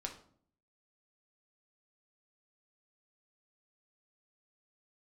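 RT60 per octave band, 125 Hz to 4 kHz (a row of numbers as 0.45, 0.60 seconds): 0.75, 0.80, 0.60, 0.50, 0.40, 0.40 seconds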